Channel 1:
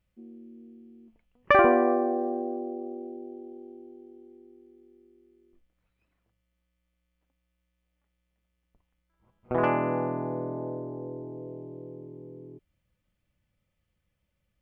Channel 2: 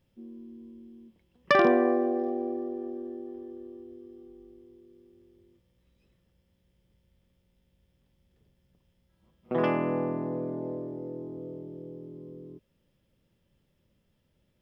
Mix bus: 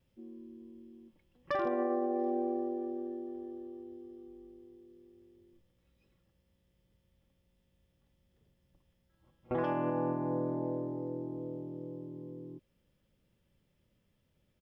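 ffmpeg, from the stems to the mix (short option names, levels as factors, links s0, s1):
-filter_complex "[0:a]volume=0.562[s0];[1:a]adelay=2.8,volume=0.668[s1];[s0][s1]amix=inputs=2:normalize=0,alimiter=limit=0.0668:level=0:latency=1:release=171"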